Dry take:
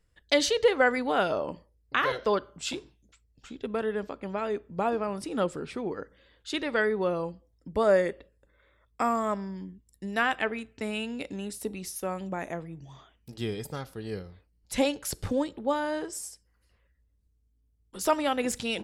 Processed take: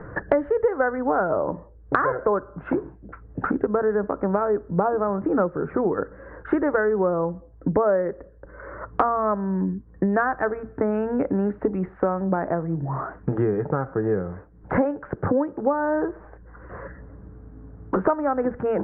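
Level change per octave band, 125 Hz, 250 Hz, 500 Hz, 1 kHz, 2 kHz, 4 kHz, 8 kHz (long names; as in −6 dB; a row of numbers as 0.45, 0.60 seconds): +11.5 dB, +8.0 dB, +6.0 dB, +6.0 dB, +0.5 dB, below −25 dB, below −40 dB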